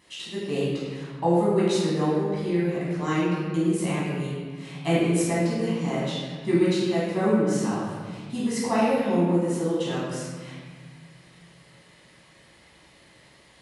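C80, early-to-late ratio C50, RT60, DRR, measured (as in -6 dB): 1.0 dB, -2.0 dB, 1.6 s, -9.0 dB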